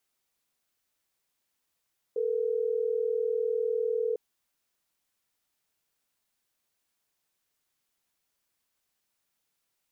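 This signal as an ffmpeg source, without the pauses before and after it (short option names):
-f lavfi -i "aevalsrc='0.0376*(sin(2*PI*440*t)+sin(2*PI*480*t))*clip(min(mod(t,6),2-mod(t,6))/0.005,0,1)':d=3.12:s=44100"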